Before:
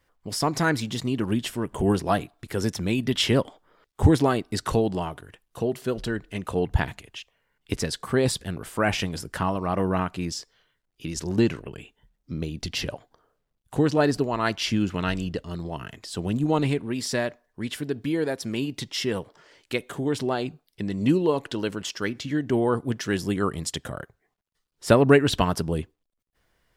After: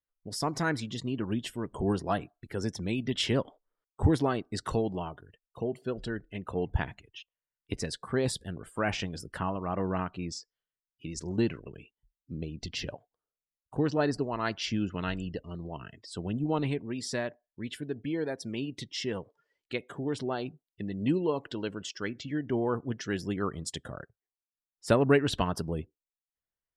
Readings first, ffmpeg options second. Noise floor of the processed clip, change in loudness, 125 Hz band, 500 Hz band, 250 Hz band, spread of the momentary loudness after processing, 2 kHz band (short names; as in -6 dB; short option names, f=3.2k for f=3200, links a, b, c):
under -85 dBFS, -6.5 dB, -6.5 dB, -6.5 dB, -6.5 dB, 13 LU, -6.5 dB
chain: -af "afftdn=nr=23:nf=-43,volume=-6.5dB"